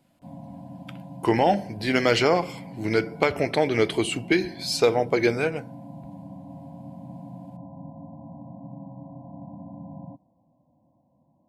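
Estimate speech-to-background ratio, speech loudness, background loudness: 18.5 dB, -23.5 LUFS, -42.0 LUFS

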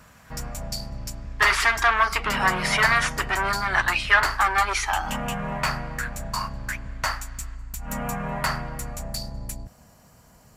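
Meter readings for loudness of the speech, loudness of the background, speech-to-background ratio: -21.5 LUFS, -31.0 LUFS, 9.5 dB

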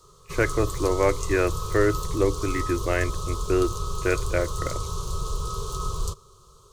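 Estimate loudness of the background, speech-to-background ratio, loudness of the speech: -32.0 LUFS, 6.0 dB, -26.0 LUFS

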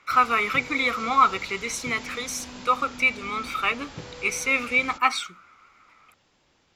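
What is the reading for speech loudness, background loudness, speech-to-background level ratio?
-24.0 LUFS, -40.5 LUFS, 16.5 dB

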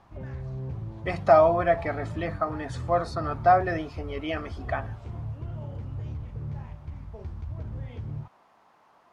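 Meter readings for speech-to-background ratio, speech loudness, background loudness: 12.0 dB, -25.5 LUFS, -37.5 LUFS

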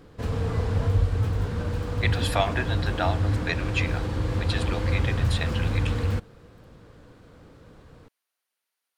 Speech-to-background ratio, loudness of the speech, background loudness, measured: -4.5 dB, -31.5 LUFS, -27.0 LUFS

